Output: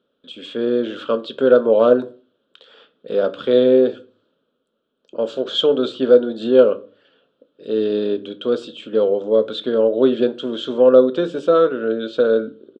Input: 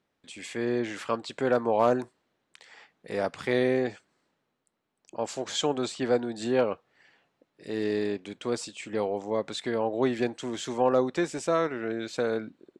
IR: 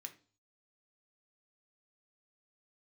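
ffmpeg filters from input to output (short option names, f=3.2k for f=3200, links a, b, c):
-filter_complex "[0:a]firequalizer=gain_entry='entry(110,0);entry(230,8);entry(340,6);entry(520,15);entry(790,-7);entry(1400,8);entry(2000,-18);entry(3200,9);entry(5400,-14);entry(7700,-24)':delay=0.05:min_phase=1,asplit=2[a][b];[1:a]atrim=start_sample=2205,highshelf=f=6.5k:g=9[c];[b][c]afir=irnorm=-1:irlink=0,volume=5.5dB[d];[a][d]amix=inputs=2:normalize=0,volume=-2dB"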